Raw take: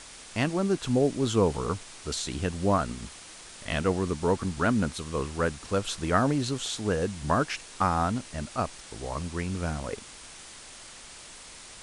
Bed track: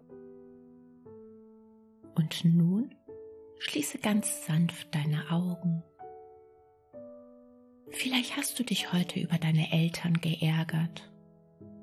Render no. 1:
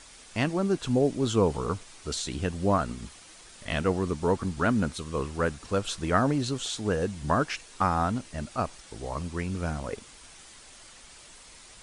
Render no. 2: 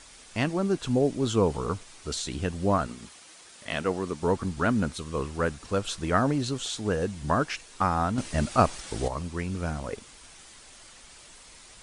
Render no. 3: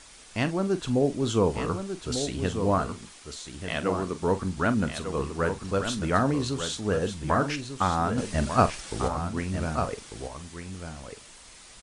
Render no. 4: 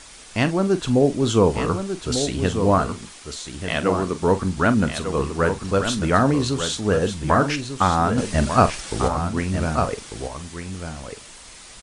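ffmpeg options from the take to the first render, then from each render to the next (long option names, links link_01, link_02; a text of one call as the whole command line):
ffmpeg -i in.wav -af "afftdn=noise_reduction=6:noise_floor=-47" out.wav
ffmpeg -i in.wav -filter_complex "[0:a]asettb=1/sr,asplit=3[link_01][link_02][link_03];[link_01]atrim=end=2.874[link_04];[link_02]atrim=start=2.87:end=4.23,asetpts=PTS-STARTPTS,afade=type=in:duration=0.004:curve=qsin,afade=type=out:start_time=1.356:duration=0.004:curve=qsin,highpass=frequency=240:poles=1[link_05];[link_03]atrim=start=4.226[link_06];[link_04][link_05]acrossfade=duration=0.004:curve1=hsin:curve2=qsin[link_07];[link_07][link_06]acrossfade=duration=0.004:curve1=qsin:curve2=hsin,asplit=3[link_08][link_09][link_10];[link_08]atrim=end=8.182[link_11];[link_09]atrim=start=8.178:end=9.082,asetpts=PTS-STARTPTS,volume=8.5dB[link_12];[link_10]atrim=start=9.078[link_13];[link_11][link_12]acrossfade=duration=0.004:curve1=hsin:curve2=hsin[link_14];[link_14][link_13]acrossfade=duration=0.004:curve1=hsin:curve2=hsin" out.wav
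ffmpeg -i in.wav -filter_complex "[0:a]asplit=2[link_01][link_02];[link_02]adelay=43,volume=-13dB[link_03];[link_01][link_03]amix=inputs=2:normalize=0,asplit=2[link_04][link_05];[link_05]aecho=0:1:1195:0.398[link_06];[link_04][link_06]amix=inputs=2:normalize=0" out.wav
ffmpeg -i in.wav -af "volume=6.5dB,alimiter=limit=-3dB:level=0:latency=1" out.wav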